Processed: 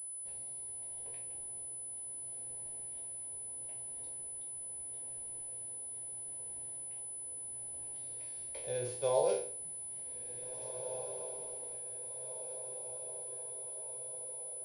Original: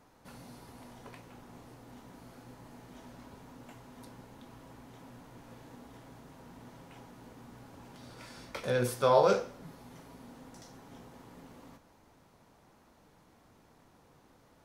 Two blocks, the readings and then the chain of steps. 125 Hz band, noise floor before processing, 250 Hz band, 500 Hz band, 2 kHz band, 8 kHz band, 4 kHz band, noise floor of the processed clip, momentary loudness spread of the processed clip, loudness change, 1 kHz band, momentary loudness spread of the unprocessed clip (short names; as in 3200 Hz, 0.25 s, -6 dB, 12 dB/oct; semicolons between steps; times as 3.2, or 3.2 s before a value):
-10.5 dB, -63 dBFS, -13.0 dB, -5.0 dB, -13.5 dB, +17.0 dB, -8.5 dB, -44 dBFS, 3 LU, -11.0 dB, -10.5 dB, 19 LU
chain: spectral trails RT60 0.47 s; tremolo 0.77 Hz, depth 31%; fixed phaser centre 530 Hz, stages 4; diffused feedback echo 1.843 s, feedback 61%, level -11 dB; pulse-width modulation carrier 10000 Hz; gain -6 dB